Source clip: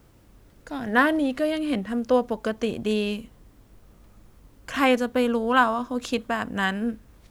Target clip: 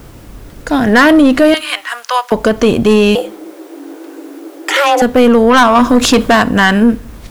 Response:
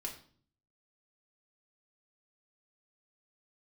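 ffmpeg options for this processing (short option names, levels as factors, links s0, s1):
-filter_complex "[0:a]asettb=1/sr,asplit=3[s0][s1][s2];[s0]atrim=end=1.544[s3];[s1]atrim=start=1.54:end=2.32,asetpts=PTS-STARTPTS,afade=t=in:d=0.004:c=qsin,afade=t=out:st=0.776:d=0.004:c=qsin,highpass=f=1000:w=0.5412,highpass=f=1000:w=1.3066[s4];[s2]atrim=start=2.316[s5];[s3][s4]acrossfade=d=0.004:c1=hsin:c2=qsin[s6];[s6][s5]acrossfade=d=0.004:c1=qsin:c2=hsin,asettb=1/sr,asplit=3[s7][s8][s9];[s7]atrim=end=5.754[s10];[s8]atrim=start=5.75:end=6.42,asetpts=PTS-STARTPTS,afade=t=in:d=0.004:c=qsin,afade=t=out:st=0.666:d=0.004:c=qsin,acontrast=47[s11];[s9]atrim=start=6.416[s12];[s10][s11]acrossfade=d=0.004:c1=hsin:c2=qsin[s13];[s13][s12]acrossfade=d=0.004:c1=qsin:c2=hsin,asoftclip=type=tanh:threshold=0.106,asettb=1/sr,asplit=3[s14][s15][s16];[s14]atrim=end=3.154[s17];[s15]atrim=start=3.15:end=5.02,asetpts=PTS-STARTPTS,afade=t=in:d=0.004:c=qsin,afade=t=out:st=1.866:d=0.004:c=qsin,afreqshift=280[s18];[s16]atrim=start=5.016[s19];[s17][s18]acrossfade=d=0.004:c1=hsin:c2=qsin[s20];[s20][s19]acrossfade=d=0.004:c1=qsin:c2=hsin,asplit=2[s21][s22];[1:a]atrim=start_sample=2205[s23];[s22][s23]afir=irnorm=-1:irlink=0,volume=0.2[s24];[s21][s24]amix=inputs=2:normalize=0,alimiter=level_in=10.6:limit=0.891:release=50:level=0:latency=1,volume=0.891"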